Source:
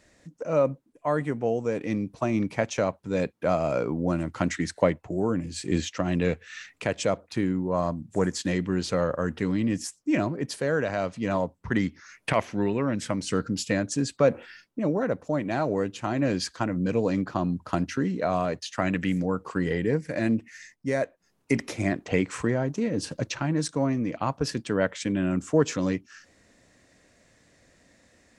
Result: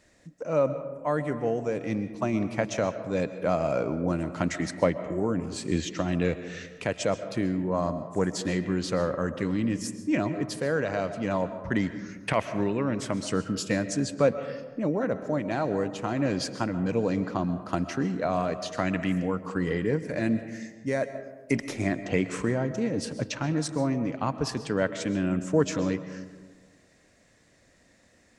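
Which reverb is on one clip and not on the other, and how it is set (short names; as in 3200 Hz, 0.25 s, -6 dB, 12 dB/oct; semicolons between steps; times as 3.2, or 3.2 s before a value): digital reverb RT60 1.4 s, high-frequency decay 0.35×, pre-delay 90 ms, DRR 11 dB; gain -1.5 dB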